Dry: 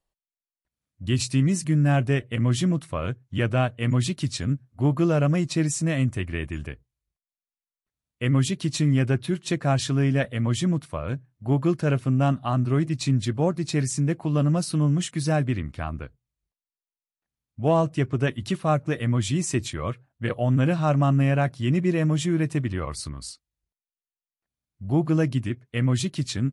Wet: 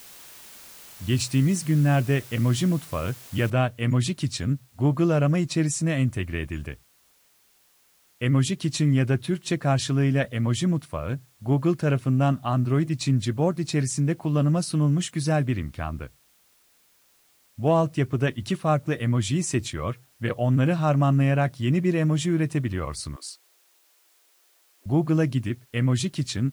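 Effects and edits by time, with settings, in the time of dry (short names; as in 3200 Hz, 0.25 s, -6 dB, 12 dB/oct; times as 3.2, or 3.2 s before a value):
3.5 noise floor step -46 dB -62 dB
23.16–24.86 steep high-pass 300 Hz 72 dB/oct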